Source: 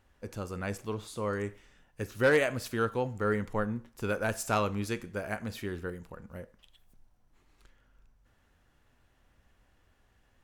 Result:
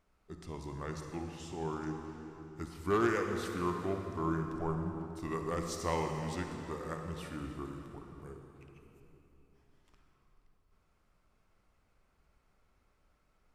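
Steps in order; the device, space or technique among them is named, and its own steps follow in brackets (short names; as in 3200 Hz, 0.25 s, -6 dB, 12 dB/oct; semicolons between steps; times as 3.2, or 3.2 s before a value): notches 50/100 Hz; slowed and reverbed (varispeed -23%; reverb RT60 3.4 s, pre-delay 48 ms, DRR 4 dB); gain -6 dB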